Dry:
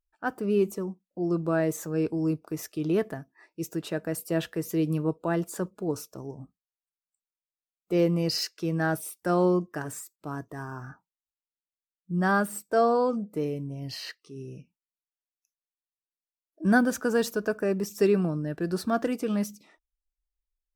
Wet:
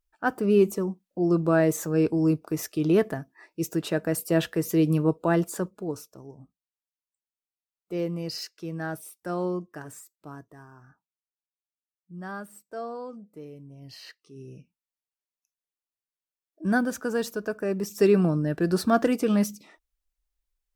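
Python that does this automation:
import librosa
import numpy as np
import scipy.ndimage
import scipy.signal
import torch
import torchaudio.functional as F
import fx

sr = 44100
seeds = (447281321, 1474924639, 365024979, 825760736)

y = fx.gain(x, sr, db=fx.line((5.4, 4.5), (6.17, -6.0), (10.27, -6.0), (10.73, -13.0), (13.45, -13.0), (14.51, -2.5), (17.56, -2.5), (18.29, 5.0)))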